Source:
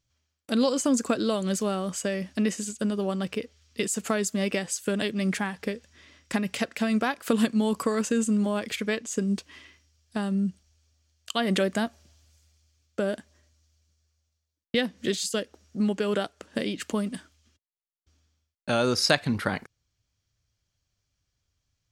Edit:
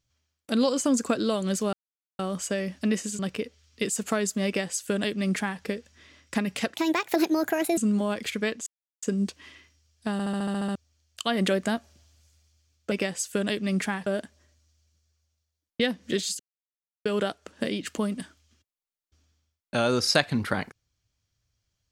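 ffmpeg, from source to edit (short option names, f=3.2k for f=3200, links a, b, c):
-filter_complex "[0:a]asplit=19[a][b][c][d][e][f][g][h][i][j][k][l][m][n][o][p][q][r][s];[a]atrim=end=1.73,asetpts=PTS-STARTPTS,afade=t=out:st=1.726:d=0.004:c=hsin,apad=pad_dur=0.46[t];[b]atrim=start=1.73:end=2.732,asetpts=PTS-STARTPTS,afade=t=in:d=0.004:c=hsin[u];[c]atrim=start=3.168:end=6.724[v];[d]atrim=start=6.72:end=8.23,asetpts=PTS-STARTPTS,asetrate=64386,aresample=44100,atrim=end_sample=45610,asetpts=PTS-STARTPTS[w];[e]atrim=start=8.226:end=9.12,asetpts=PTS-STARTPTS,afade=t=out:st=0.89:d=0.004:c=hsin,apad=pad_dur=0.36[x];[f]atrim=start=9.12:end=10.292,asetpts=PTS-STARTPTS,afade=t=in:d=0.004:c=hsin[y];[g]atrim=start=10.218:end=10.292[z];[h]atrim=start=10.218:end=10.292[aa];[i]atrim=start=10.218:end=10.292[ab];[j]atrim=start=10.218:end=10.292[ac];[k]atrim=start=10.218:end=10.292[ad];[l]atrim=start=10.218:end=10.292[ae];[m]atrim=start=10.218:end=10.292[af];[n]atrim=start=10.218:end=10.292[ag];[o]atrim=start=10.848:end=13.012[ah];[p]atrim=start=4.438:end=5.592[ai];[q]atrim=start=13.008:end=15.34,asetpts=PTS-STARTPTS,afade=t=out:st=2.328:d=0.004:c=hsin[aj];[r]atrim=start=15.34:end=16,asetpts=PTS-STARTPTS,volume=0[ak];[s]atrim=start=16,asetpts=PTS-STARTPTS,afade=t=in:d=0.004:c=hsin[al];[t][u]concat=n=2:v=0:a=1[am];[am][v]acrossfade=d=0.004:c1=hsin:c2=hsin[an];[an][w]acrossfade=d=0.004:c1=hsin:c2=hsin[ao];[x][y]concat=n=2:v=0:a=1[ap];[ao][ap]acrossfade=d=0.004:c1=hsin:c2=hsin[aq];[aq][z]acrossfade=d=0.004:c1=hsin:c2=hsin[ar];[ar][aa]acrossfade=d=0.004:c1=hsin:c2=hsin[as];[as][ab]acrossfade=d=0.004:c1=hsin:c2=hsin[at];[at][ac]acrossfade=d=0.004:c1=hsin:c2=hsin[au];[au][ad]acrossfade=d=0.004:c1=hsin:c2=hsin[av];[av][ae]acrossfade=d=0.004:c1=hsin:c2=hsin[aw];[aw][af]acrossfade=d=0.004:c1=hsin:c2=hsin[ax];[ax][ag]acrossfade=d=0.004:c1=hsin:c2=hsin[ay];[ay][ah]acrossfade=d=0.004:c1=hsin:c2=hsin[az];[az][ai]acrossfade=d=0.004:c1=hsin:c2=hsin[ba];[aj][ak][al]concat=n=3:v=0:a=1[bb];[ba][bb]acrossfade=d=0.004:c1=hsin:c2=hsin"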